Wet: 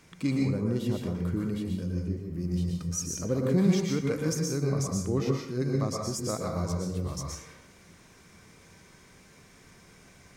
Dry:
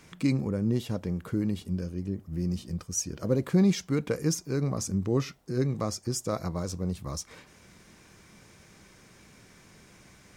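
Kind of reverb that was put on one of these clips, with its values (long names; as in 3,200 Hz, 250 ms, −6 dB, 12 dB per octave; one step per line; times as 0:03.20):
dense smooth reverb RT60 0.63 s, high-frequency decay 0.75×, pre-delay 105 ms, DRR −0.5 dB
level −3 dB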